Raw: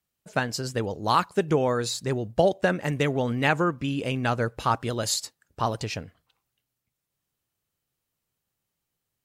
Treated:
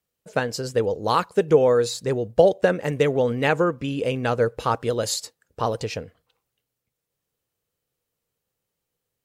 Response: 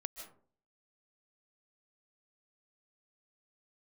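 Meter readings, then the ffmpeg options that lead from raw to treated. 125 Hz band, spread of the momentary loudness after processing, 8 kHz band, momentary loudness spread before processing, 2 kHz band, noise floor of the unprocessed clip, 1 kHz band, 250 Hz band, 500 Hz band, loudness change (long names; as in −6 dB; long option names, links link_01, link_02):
0.0 dB, 10 LU, 0.0 dB, 7 LU, 0.0 dB, −83 dBFS, +0.5 dB, +1.0 dB, +7.0 dB, +3.5 dB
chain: -af "equalizer=frequency=480:width=3.2:gain=10.5"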